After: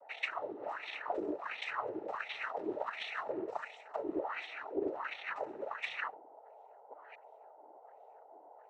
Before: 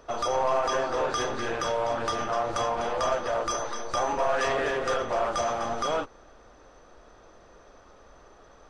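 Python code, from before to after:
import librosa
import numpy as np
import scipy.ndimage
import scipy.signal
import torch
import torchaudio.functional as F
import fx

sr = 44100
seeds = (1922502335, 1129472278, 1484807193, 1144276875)

y = fx.sample_sort(x, sr, block=64, at=(2.34, 3.2))
y = fx.graphic_eq_31(y, sr, hz=(400, 800, 2500), db=(11, 4, -9))
y = fx.cheby_harmonics(y, sr, harmonics=(6, 7), levels_db=(-17, -15), full_scale_db=-11.0)
y = fx.echo_feedback(y, sr, ms=70, feedback_pct=25, wet_db=-8.5)
y = fx.spec_paint(y, sr, seeds[0], shape='rise', start_s=6.9, length_s=0.25, low_hz=570.0, high_hz=2400.0, level_db=-23.0)
y = fx.over_compress(y, sr, threshold_db=-28.0, ratio=-1.0)
y = fx.wah_lfo(y, sr, hz=1.4, low_hz=350.0, high_hz=2700.0, q=16.0)
y = y + 10.0 ** (-58.0 / 20.0) * np.sin(2.0 * np.pi * 650.0 * np.arange(len(y)) / sr)
y = fx.noise_vocoder(y, sr, seeds[1], bands=12)
y = fx.doppler_dist(y, sr, depth_ms=0.12)
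y = F.gain(torch.from_numpy(y), 4.0).numpy()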